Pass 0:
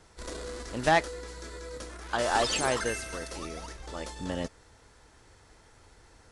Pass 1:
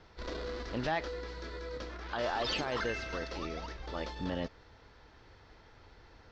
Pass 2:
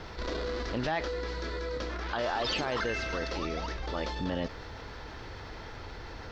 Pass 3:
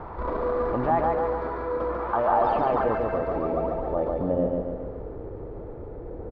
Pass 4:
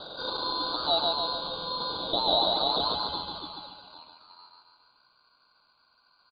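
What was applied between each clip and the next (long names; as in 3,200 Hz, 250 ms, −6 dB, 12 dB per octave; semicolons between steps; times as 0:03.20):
inverse Chebyshev low-pass filter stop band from 8,800 Hz, stop band 40 dB; brickwall limiter −24.5 dBFS, peak gain reduction 11.5 dB
envelope flattener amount 50%; level +1 dB
hollow resonant body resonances 1,200/2,300 Hz, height 8 dB; low-pass filter sweep 950 Hz → 470 Hz, 0:02.28–0:05.18; repeating echo 142 ms, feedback 52%, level −3 dB; level +3.5 dB
voice inversion scrambler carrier 3,100 Hz; low-pass filter sweep 2,200 Hz → 840 Hz, 0:03.03–0:04.27; ring modulation 1,600 Hz; level −6.5 dB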